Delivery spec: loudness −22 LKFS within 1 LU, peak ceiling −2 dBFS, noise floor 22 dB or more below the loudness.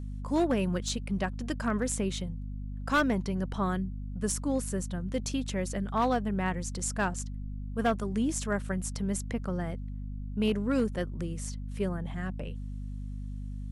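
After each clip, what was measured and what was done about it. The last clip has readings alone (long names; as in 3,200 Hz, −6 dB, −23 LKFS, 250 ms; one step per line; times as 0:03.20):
share of clipped samples 0.4%; peaks flattened at −20.0 dBFS; mains hum 50 Hz; hum harmonics up to 250 Hz; level of the hum −35 dBFS; integrated loudness −32.0 LKFS; sample peak −20.0 dBFS; target loudness −22.0 LKFS
→ clipped peaks rebuilt −20 dBFS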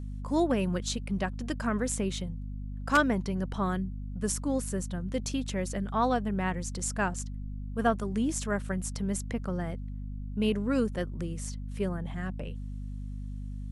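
share of clipped samples 0.0%; mains hum 50 Hz; hum harmonics up to 250 Hz; level of the hum −35 dBFS
→ hum removal 50 Hz, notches 5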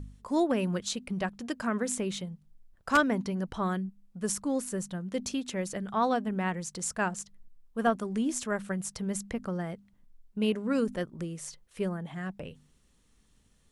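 mains hum none found; integrated loudness −32.0 LKFS; sample peak −10.5 dBFS; target loudness −22.0 LKFS
→ level +10 dB
brickwall limiter −2 dBFS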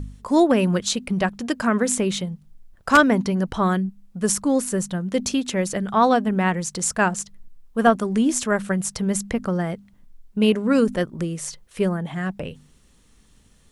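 integrated loudness −22.0 LKFS; sample peak −2.0 dBFS; background noise floor −56 dBFS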